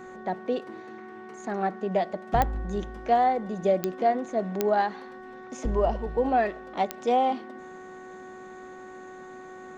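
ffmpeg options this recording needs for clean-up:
-af "adeclick=t=4,bandreject=f=371.7:t=h:w=4,bandreject=f=743.4:t=h:w=4,bandreject=f=1.1151k:t=h:w=4,bandreject=f=1.4868k:t=h:w=4,bandreject=f=1.8585k:t=h:w=4"

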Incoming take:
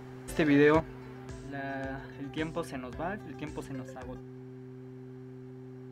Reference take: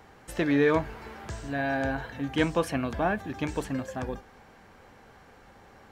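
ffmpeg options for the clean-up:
-af "bandreject=f=128.2:t=h:w=4,bandreject=f=256.4:t=h:w=4,bandreject=f=384.6:t=h:w=4,asetnsamples=n=441:p=0,asendcmd='0.8 volume volume 9dB',volume=0dB"

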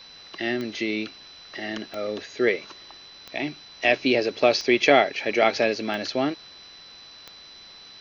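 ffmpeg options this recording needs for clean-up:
-af "adeclick=t=4,bandreject=f=4k:w=30,afwtdn=0.005"

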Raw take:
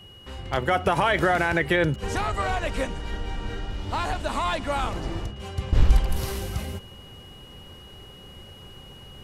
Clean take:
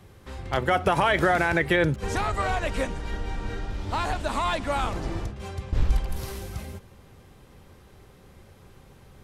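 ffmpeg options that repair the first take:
-af "bandreject=f=2.9k:w=30,asetnsamples=n=441:p=0,asendcmd='5.58 volume volume -5dB',volume=0dB"

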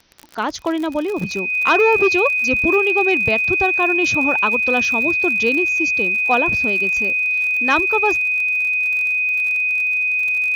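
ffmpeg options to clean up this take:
-af "adeclick=t=4,bandreject=f=2.5k:w=30,agate=range=-21dB:threshold=-13dB"

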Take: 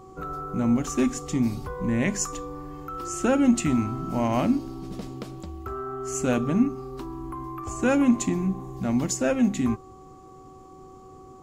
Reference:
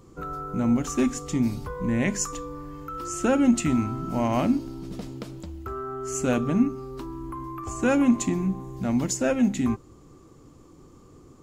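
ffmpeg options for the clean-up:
-af "bandreject=f=378:t=h:w=4,bandreject=f=756:t=h:w=4,bandreject=f=1.134k:t=h:w=4"

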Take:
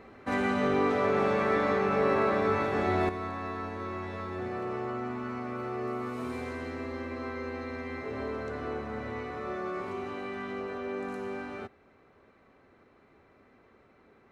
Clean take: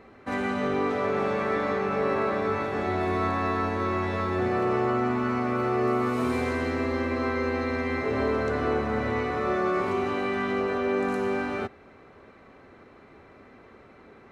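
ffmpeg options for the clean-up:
-af "asetnsamples=n=441:p=0,asendcmd='3.09 volume volume 9.5dB',volume=0dB"

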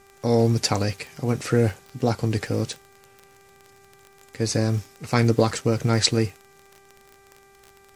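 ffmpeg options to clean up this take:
-af "adeclick=t=4,bandreject=f=393.9:t=h:w=4,bandreject=f=787.8:t=h:w=4,bandreject=f=1.1817k:t=h:w=4,bandreject=f=1.5756k:t=h:w=4,bandreject=f=1.9695k:t=h:w=4,bandreject=f=2.3634k:t=h:w=4"

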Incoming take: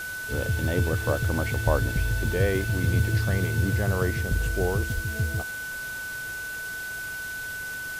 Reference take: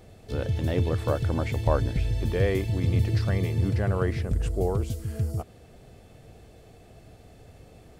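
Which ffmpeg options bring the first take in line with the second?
-filter_complex "[0:a]bandreject=f=1.5k:w=30,asplit=3[a][b][c];[a]afade=t=out:st=4.94:d=0.02[d];[b]highpass=f=140:w=0.5412,highpass=f=140:w=1.3066,afade=t=in:st=4.94:d=0.02,afade=t=out:st=5.06:d=0.02[e];[c]afade=t=in:st=5.06:d=0.02[f];[d][e][f]amix=inputs=3:normalize=0,afwtdn=0.0089"

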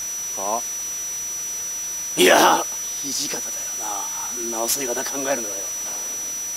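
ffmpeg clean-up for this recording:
-af "adeclick=t=4,bandreject=f=5.9k:w=30,afwtdn=0.016"

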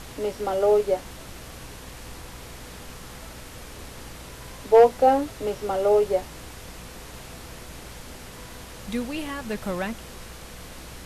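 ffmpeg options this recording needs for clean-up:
-af "bandreject=f=61:t=h:w=4,bandreject=f=122:t=h:w=4,bandreject=f=183:t=h:w=4,bandreject=f=244:t=h:w=4,bandreject=f=500:w=30,afftdn=nr=27:nf=-42"

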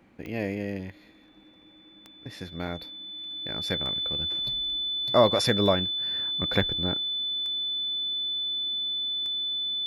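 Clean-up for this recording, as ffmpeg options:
-af "adeclick=t=4,bandreject=f=3.5k:w=30"

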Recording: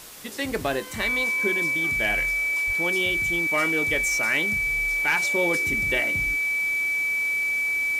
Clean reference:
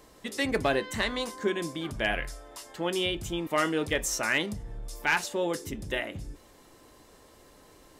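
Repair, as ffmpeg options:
-filter_complex "[0:a]bandreject=f=2.3k:w=30,asplit=3[a][b][c];[a]afade=t=out:st=2.66:d=0.02[d];[b]highpass=f=140:w=0.5412,highpass=f=140:w=1.3066,afade=t=in:st=2.66:d=0.02,afade=t=out:st=2.78:d=0.02[e];[c]afade=t=in:st=2.78:d=0.02[f];[d][e][f]amix=inputs=3:normalize=0,afwtdn=0.0079,asetnsamples=n=441:p=0,asendcmd='5.22 volume volume -3.5dB',volume=0dB"

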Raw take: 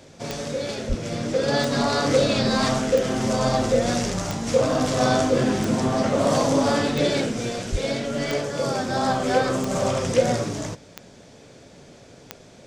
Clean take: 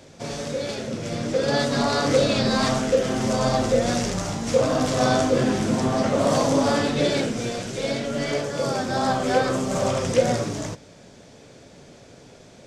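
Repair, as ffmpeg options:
-filter_complex "[0:a]adeclick=t=4,asplit=3[a][b][c];[a]afade=t=out:st=0.88:d=0.02[d];[b]highpass=f=140:w=0.5412,highpass=f=140:w=1.3066,afade=t=in:st=0.88:d=0.02,afade=t=out:st=1:d=0.02[e];[c]afade=t=in:st=1:d=0.02[f];[d][e][f]amix=inputs=3:normalize=0,asplit=3[g][h][i];[g]afade=t=out:st=7.71:d=0.02[j];[h]highpass=f=140:w=0.5412,highpass=f=140:w=1.3066,afade=t=in:st=7.71:d=0.02,afade=t=out:st=7.83:d=0.02[k];[i]afade=t=in:st=7.83:d=0.02[l];[j][k][l]amix=inputs=3:normalize=0"

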